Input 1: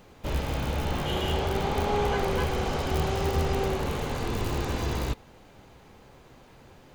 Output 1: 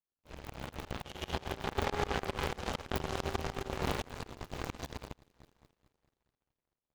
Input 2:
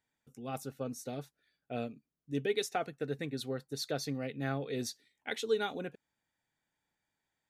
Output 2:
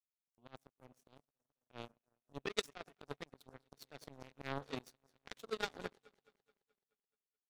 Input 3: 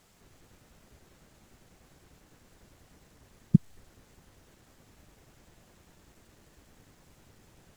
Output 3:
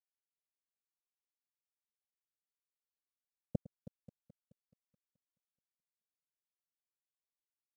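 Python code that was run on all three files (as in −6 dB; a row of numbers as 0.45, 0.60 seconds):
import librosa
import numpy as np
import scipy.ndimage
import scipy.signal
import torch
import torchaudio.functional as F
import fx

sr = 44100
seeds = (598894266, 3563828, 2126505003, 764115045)

y = fx.echo_alternate(x, sr, ms=107, hz=930.0, feedback_pct=89, wet_db=-13.5)
y = fx.power_curve(y, sr, exponent=3.0)
y = fx.auto_swell(y, sr, attack_ms=371.0)
y = F.gain(torch.from_numpy(y), 17.5).numpy()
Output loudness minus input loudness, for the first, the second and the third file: −9.5, −8.5, −17.5 LU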